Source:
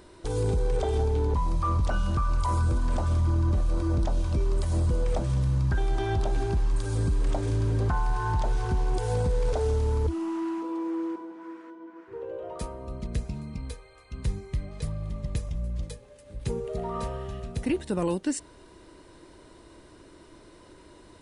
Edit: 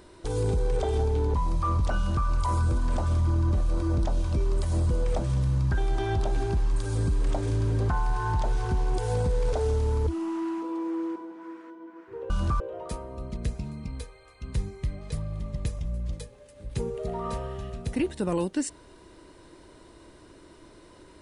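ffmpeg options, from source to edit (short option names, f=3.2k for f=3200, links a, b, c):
-filter_complex "[0:a]asplit=3[a][b][c];[a]atrim=end=12.302[d];[b]atrim=start=1.968:end=2.272[e];[c]atrim=start=12.298[f];[d][e]acrossfade=d=0.004:c1=hsin:c2=hsin[g];[g][f]acrossfade=d=0.004:c1=hsin:c2=hsin"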